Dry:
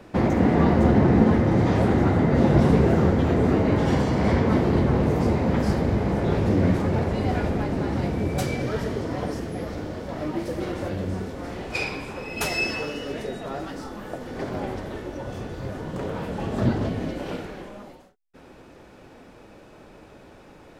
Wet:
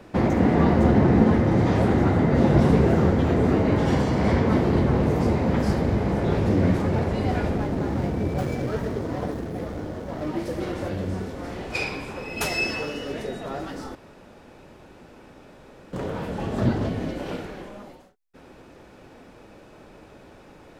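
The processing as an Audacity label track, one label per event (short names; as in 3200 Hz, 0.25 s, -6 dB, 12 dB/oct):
7.560000	10.270000	median filter over 15 samples
13.950000	15.930000	room tone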